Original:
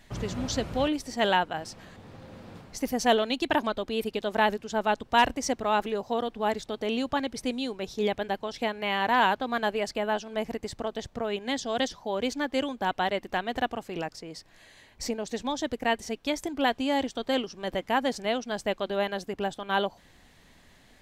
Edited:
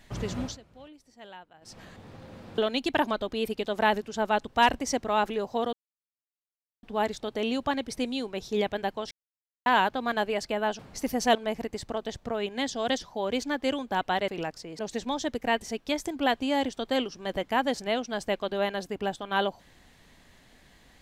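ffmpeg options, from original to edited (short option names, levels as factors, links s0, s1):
-filter_complex "[0:a]asplit=11[s0][s1][s2][s3][s4][s5][s6][s7][s8][s9][s10];[s0]atrim=end=0.58,asetpts=PTS-STARTPTS,afade=t=out:st=0.41:d=0.17:silence=0.0749894[s11];[s1]atrim=start=0.58:end=1.61,asetpts=PTS-STARTPTS,volume=0.075[s12];[s2]atrim=start=1.61:end=2.582,asetpts=PTS-STARTPTS,afade=t=in:d=0.17:silence=0.0749894[s13];[s3]atrim=start=3.138:end=6.29,asetpts=PTS-STARTPTS,afade=t=out:st=3.148:d=0.004:c=hsin,apad=pad_dur=1.1[s14];[s4]atrim=start=6.29:end=8.57,asetpts=PTS-STARTPTS,afade=t=in:d=0.004:c=hsin,afade=t=out:st=2.276:d=0.004:c=hsin[s15];[s5]atrim=start=8.57:end=9.12,asetpts=PTS-STARTPTS,volume=0[s16];[s6]atrim=start=9.12:end=10.252,asetpts=PTS-STARTPTS,afade=t=in:d=0.004:c=hsin[s17];[s7]atrim=start=2.578:end=3.142[s18];[s8]atrim=start=10.248:end=13.182[s19];[s9]atrim=start=13.858:end=14.372[s20];[s10]atrim=start=15.168[s21];[s11][s12][s13]concat=n=3:v=0:a=1[s22];[s14][s15][s16][s17]concat=n=4:v=0:a=1[s23];[s22][s23]acrossfade=d=0.004:c1=hsin:c2=hsin[s24];[s24][s18]acrossfade=d=0.004:c1=hsin:c2=hsin[s25];[s25][s19]acrossfade=d=0.004:c1=hsin:c2=hsin[s26];[s26][s20]acrossfade=d=0.004:c1=hsin:c2=hsin[s27];[s27][s21]acrossfade=d=0.004:c1=hsin:c2=hsin"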